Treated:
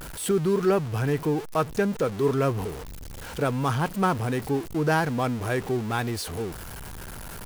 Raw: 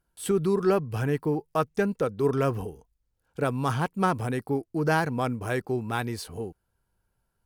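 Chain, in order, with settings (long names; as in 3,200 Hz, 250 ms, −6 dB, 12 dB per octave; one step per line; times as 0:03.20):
converter with a step at zero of −32 dBFS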